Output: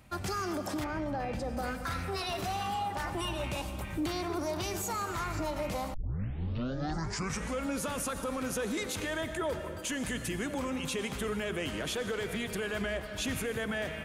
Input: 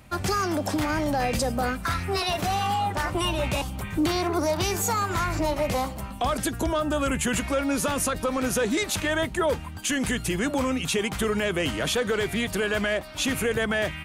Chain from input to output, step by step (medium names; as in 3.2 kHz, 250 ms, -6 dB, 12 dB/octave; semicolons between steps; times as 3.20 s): reverberation RT60 2.2 s, pre-delay 78 ms, DRR 10 dB; peak limiter -19 dBFS, peak gain reduction 4.5 dB; 0.84–1.57 s: low-pass 1.8 kHz 6 dB/octave; 5.94 s: tape start 1.71 s; 12.81–13.38 s: peaking EQ 68 Hz +8 dB 1.7 oct; trim -7 dB